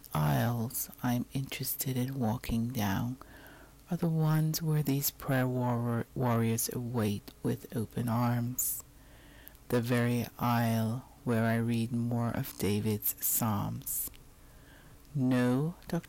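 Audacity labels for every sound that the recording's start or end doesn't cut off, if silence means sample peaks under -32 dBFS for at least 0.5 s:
3.920000	8.790000	sound
9.480000	14.080000	sound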